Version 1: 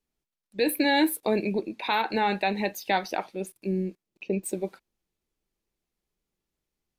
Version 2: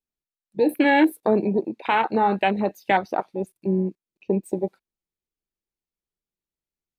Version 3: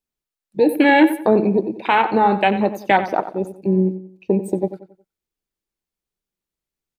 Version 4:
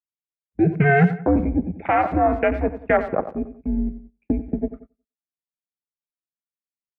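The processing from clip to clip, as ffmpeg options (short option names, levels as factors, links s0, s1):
-af "afwtdn=0.0316,volume=1.88"
-filter_complex "[0:a]asplit=2[s0][s1];[s1]adelay=91,lowpass=f=3700:p=1,volume=0.251,asplit=2[s2][s3];[s3]adelay=91,lowpass=f=3700:p=1,volume=0.37,asplit=2[s4][s5];[s5]adelay=91,lowpass=f=3700:p=1,volume=0.37,asplit=2[s6][s7];[s7]adelay=91,lowpass=f=3700:p=1,volume=0.37[s8];[s0][s2][s4][s6][s8]amix=inputs=5:normalize=0,volume=1.68"
-filter_complex "[0:a]highpass=f=220:t=q:w=0.5412,highpass=f=220:t=q:w=1.307,lowpass=f=2400:t=q:w=0.5176,lowpass=f=2400:t=q:w=0.7071,lowpass=f=2400:t=q:w=1.932,afreqshift=-140,asplit=2[s0][s1];[s1]adelay=110,highpass=300,lowpass=3400,asoftclip=type=hard:threshold=0.224,volume=0.0891[s2];[s0][s2]amix=inputs=2:normalize=0,agate=range=0.178:threshold=0.0112:ratio=16:detection=peak,volume=0.75"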